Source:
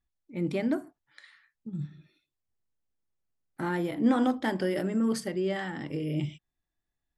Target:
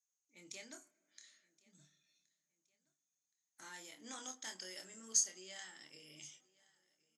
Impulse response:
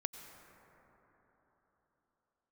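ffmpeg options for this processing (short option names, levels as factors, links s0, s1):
-filter_complex "[0:a]bandpass=f=6500:t=q:w=16:csg=0,asplit=2[s0][s1];[s1]adelay=27,volume=0.473[s2];[s0][s2]amix=inputs=2:normalize=0,aecho=1:1:1071|2142:0.0631|0.0227,asplit=2[s3][s4];[1:a]atrim=start_sample=2205[s5];[s4][s5]afir=irnorm=-1:irlink=0,volume=0.15[s6];[s3][s6]amix=inputs=2:normalize=0,volume=7.94"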